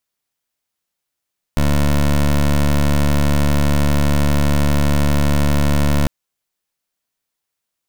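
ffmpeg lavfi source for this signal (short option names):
-f lavfi -i "aevalsrc='0.2*(2*lt(mod(72.5*t,1),0.18)-1)':d=4.5:s=44100"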